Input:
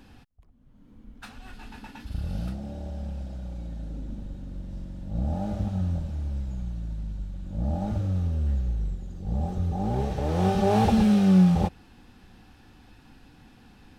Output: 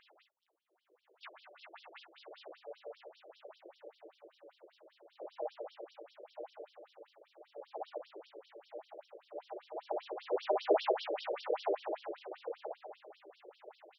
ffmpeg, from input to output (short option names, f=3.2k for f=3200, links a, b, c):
-filter_complex "[0:a]asplit=2[a][b];[b]aecho=0:1:12|35|67:0.422|0.596|0.178[c];[a][c]amix=inputs=2:normalize=0,asplit=3[d][e][f];[e]asetrate=35002,aresample=44100,atempo=1.25992,volume=0dB[g];[f]asetrate=55563,aresample=44100,atempo=0.793701,volume=-11dB[h];[d][g][h]amix=inputs=3:normalize=0,asoftclip=type=hard:threshold=-11dB,asplit=2[i][j];[j]adelay=1032,lowpass=f=1.9k:p=1,volume=-6dB,asplit=2[k][l];[l]adelay=1032,lowpass=f=1.9k:p=1,volume=0.27,asplit=2[m][n];[n]adelay=1032,lowpass=f=1.9k:p=1,volume=0.27[o];[k][m][o]amix=inputs=3:normalize=0[p];[i][p]amix=inputs=2:normalize=0,afftfilt=real='re*between(b*sr/1024,430*pow(4200/430,0.5+0.5*sin(2*PI*5.1*pts/sr))/1.41,430*pow(4200/430,0.5+0.5*sin(2*PI*5.1*pts/sr))*1.41)':imag='im*between(b*sr/1024,430*pow(4200/430,0.5+0.5*sin(2*PI*5.1*pts/sr))/1.41,430*pow(4200/430,0.5+0.5*sin(2*PI*5.1*pts/sr))*1.41)':win_size=1024:overlap=0.75,volume=-4.5dB"